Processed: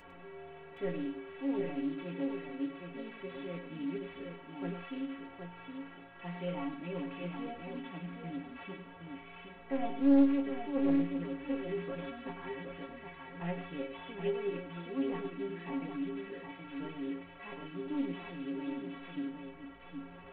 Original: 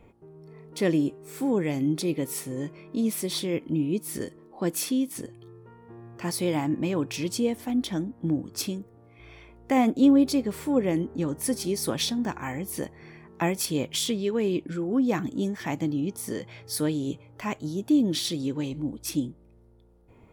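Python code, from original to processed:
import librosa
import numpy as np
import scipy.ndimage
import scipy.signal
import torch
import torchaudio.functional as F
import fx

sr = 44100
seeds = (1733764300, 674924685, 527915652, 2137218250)

y = fx.delta_mod(x, sr, bps=16000, step_db=-34.0)
y = fx.peak_eq(y, sr, hz=87.0, db=-10.5, octaves=2.5)
y = fx.stiff_resonator(y, sr, f0_hz=82.0, decay_s=0.48, stiffness=0.03)
y = fx.echo_multitap(y, sr, ms=(102, 769), db=(-8.5, -5.5))
y = fx.doppler_dist(y, sr, depth_ms=0.26)
y = F.gain(torch.from_numpy(y), 1.0).numpy()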